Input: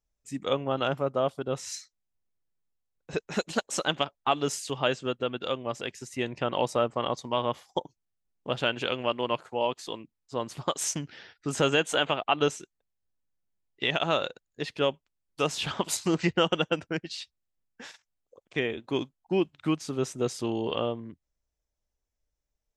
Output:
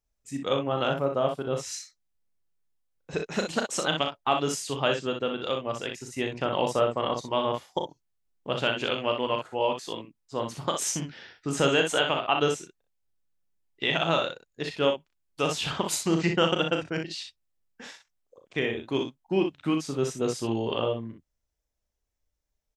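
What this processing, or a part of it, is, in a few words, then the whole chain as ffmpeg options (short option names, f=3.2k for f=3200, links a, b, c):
slapback doubling: -filter_complex "[0:a]asplit=3[a][b][c];[b]adelay=36,volume=-7dB[d];[c]adelay=61,volume=-6.5dB[e];[a][d][e]amix=inputs=3:normalize=0"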